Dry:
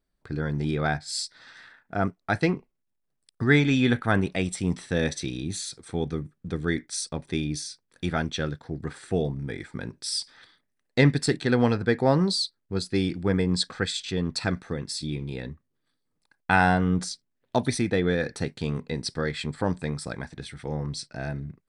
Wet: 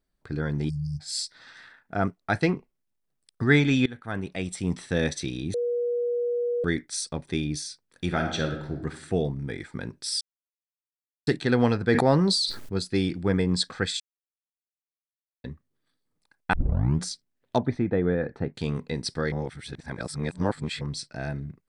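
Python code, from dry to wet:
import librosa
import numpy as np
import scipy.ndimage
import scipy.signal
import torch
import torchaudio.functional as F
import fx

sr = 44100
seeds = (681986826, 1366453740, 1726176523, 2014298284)

y = fx.spec_erase(x, sr, start_s=0.69, length_s=0.31, low_hz=210.0, high_hz=4400.0)
y = fx.reverb_throw(y, sr, start_s=8.05, length_s=0.73, rt60_s=0.82, drr_db=4.0)
y = fx.sustainer(y, sr, db_per_s=32.0, at=(11.84, 12.77))
y = fx.lowpass(y, sr, hz=1300.0, slope=12, at=(17.58, 18.55))
y = fx.edit(y, sr, fx.fade_in_from(start_s=3.86, length_s=0.97, floor_db=-22.0),
    fx.bleep(start_s=5.54, length_s=1.1, hz=481.0, db=-23.5),
    fx.silence(start_s=10.21, length_s=1.06),
    fx.silence(start_s=14.0, length_s=1.44),
    fx.tape_start(start_s=16.53, length_s=0.49),
    fx.reverse_span(start_s=19.32, length_s=1.49), tone=tone)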